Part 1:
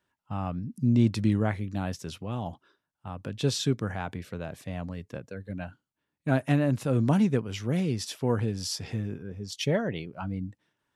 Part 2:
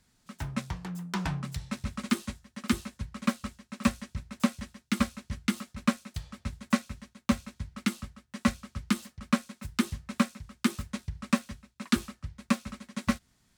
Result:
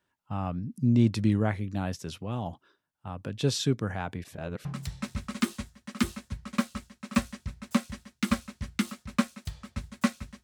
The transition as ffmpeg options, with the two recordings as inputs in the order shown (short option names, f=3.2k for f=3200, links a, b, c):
-filter_complex "[0:a]apad=whole_dur=10.43,atrim=end=10.43,asplit=2[a][b];[a]atrim=end=4.242[c];[b]atrim=start=4.238:end=4.652,asetpts=PTS-STARTPTS,areverse[d];[1:a]atrim=start=1.338:end=7.12[e];[c][d]acrossfade=d=0.004:c1=hsin:c2=hsin[f];[f][e]acrossfade=d=0.004:c1=hsin:c2=hsin"